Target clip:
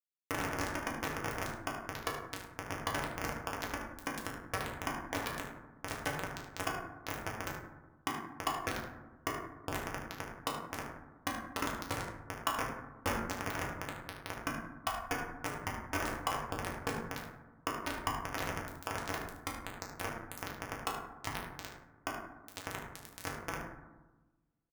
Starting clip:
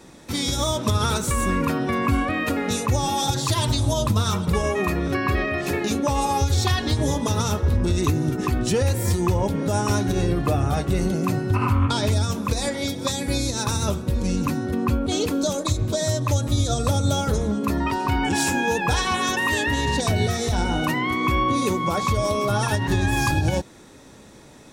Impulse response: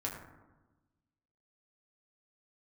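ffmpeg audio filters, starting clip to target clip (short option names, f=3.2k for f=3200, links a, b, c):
-filter_complex "[0:a]highpass=f=980:p=1,aecho=1:1:3.7:0.76,adynamicequalizer=threshold=0.0112:dfrequency=3300:dqfactor=1.1:tfrequency=3300:tqfactor=1.1:attack=5:release=100:ratio=0.375:range=2:mode=cutabove:tftype=bell,acompressor=threshold=-32dB:ratio=5,acrusher=samples=11:mix=1:aa=0.000001,flanger=delay=1.5:depth=2.2:regen=-88:speed=0.15:shape=triangular,acrusher=bits=4:mix=0:aa=0.000001,aecho=1:1:36|75:0.376|0.282[a];[1:a]atrim=start_sample=2205[b];[a][b]afir=irnorm=-1:irlink=0,volume=5dB"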